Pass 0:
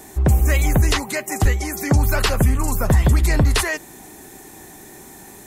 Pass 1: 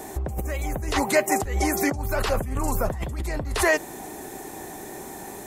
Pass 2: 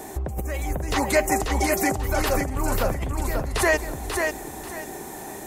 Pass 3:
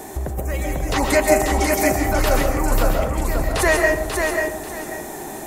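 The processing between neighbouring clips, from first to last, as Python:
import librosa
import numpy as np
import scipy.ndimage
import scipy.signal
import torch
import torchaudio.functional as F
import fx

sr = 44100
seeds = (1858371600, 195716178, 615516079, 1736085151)

y1 = fx.over_compress(x, sr, threshold_db=-22.0, ratio=-1.0)
y1 = fx.peak_eq(y1, sr, hz=610.0, db=8.0, octaves=1.9)
y1 = y1 * 10.0 ** (-5.0 / 20.0)
y2 = fx.echo_feedback(y1, sr, ms=539, feedback_pct=25, wet_db=-4.5)
y3 = fx.rev_freeverb(y2, sr, rt60_s=0.8, hf_ratio=0.35, predelay_ms=95, drr_db=2.5)
y3 = y3 * 10.0 ** (2.5 / 20.0)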